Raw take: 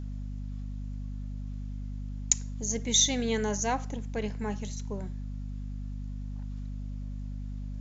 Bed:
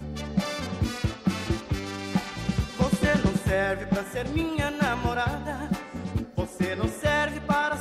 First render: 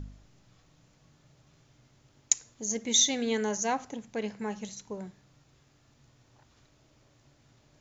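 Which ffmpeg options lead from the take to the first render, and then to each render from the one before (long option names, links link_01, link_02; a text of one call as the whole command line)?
ffmpeg -i in.wav -af "bandreject=frequency=50:width_type=h:width=4,bandreject=frequency=100:width_type=h:width=4,bandreject=frequency=150:width_type=h:width=4,bandreject=frequency=200:width_type=h:width=4,bandreject=frequency=250:width_type=h:width=4" out.wav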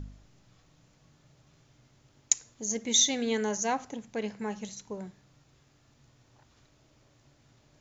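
ffmpeg -i in.wav -af anull out.wav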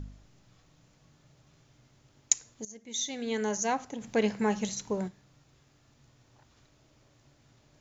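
ffmpeg -i in.wav -filter_complex "[0:a]asplit=3[link_01][link_02][link_03];[link_01]afade=type=out:start_time=4:duration=0.02[link_04];[link_02]acontrast=85,afade=type=in:start_time=4:duration=0.02,afade=type=out:start_time=5.07:duration=0.02[link_05];[link_03]afade=type=in:start_time=5.07:duration=0.02[link_06];[link_04][link_05][link_06]amix=inputs=3:normalize=0,asplit=2[link_07][link_08];[link_07]atrim=end=2.65,asetpts=PTS-STARTPTS,afade=type=out:start_time=2.646:duration=0.004:curve=hsin:silence=0.149624[link_09];[link_08]atrim=start=2.65,asetpts=PTS-STARTPTS,afade=type=in:duration=0.82:curve=qua:silence=0.149624[link_10];[link_09][link_10]concat=n=2:v=0:a=1" out.wav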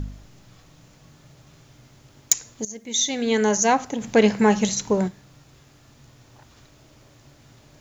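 ffmpeg -i in.wav -af "aeval=exprs='0.596*sin(PI/2*2.24*val(0)/0.596)':channel_layout=same,acrusher=bits=10:mix=0:aa=0.000001" out.wav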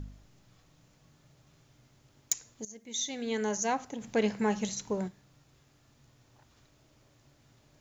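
ffmpeg -i in.wav -af "volume=-11.5dB" out.wav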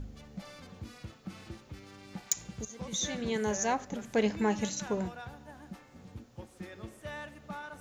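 ffmpeg -i in.wav -i bed.wav -filter_complex "[1:a]volume=-18dB[link_01];[0:a][link_01]amix=inputs=2:normalize=0" out.wav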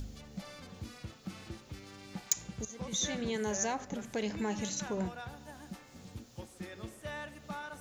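ffmpeg -i in.wav -filter_complex "[0:a]acrossover=split=3200[link_01][link_02];[link_01]alimiter=level_in=3dB:limit=-24dB:level=0:latency=1:release=80,volume=-3dB[link_03];[link_02]acompressor=mode=upward:threshold=-52dB:ratio=2.5[link_04];[link_03][link_04]amix=inputs=2:normalize=0" out.wav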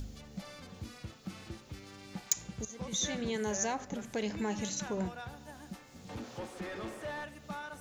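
ffmpeg -i in.wav -filter_complex "[0:a]asettb=1/sr,asplit=3[link_01][link_02][link_03];[link_01]atrim=end=6.094[link_04];[link_02]atrim=start=6.09:end=7.24,asetpts=PTS-STARTPTS,afade=type=in:duration=0.004:curve=qsin,afade=type=out:start_time=1.146:duration=0.004:curve=qsin,asplit=2[link_05][link_06];[link_06]highpass=frequency=720:poles=1,volume=28dB,asoftclip=type=tanh:threshold=-31dB[link_07];[link_05][link_07]amix=inputs=2:normalize=0,lowpass=frequency=1100:poles=1,volume=-6dB[link_08];[link_03]atrim=start=7.236[link_09];[link_04][link_08]acrossfade=duration=0.004:curve1=hsin:curve2=qsin[link_10];[link_10][link_09]acrossfade=duration=0.004:curve1=qsin:curve2=hsin" out.wav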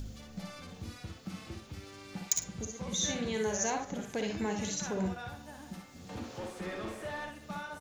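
ffmpeg -i in.wav -filter_complex "[0:a]asplit=2[link_01][link_02];[link_02]adelay=46,volume=-13.5dB[link_03];[link_01][link_03]amix=inputs=2:normalize=0,aecho=1:1:58|69:0.501|0.335" out.wav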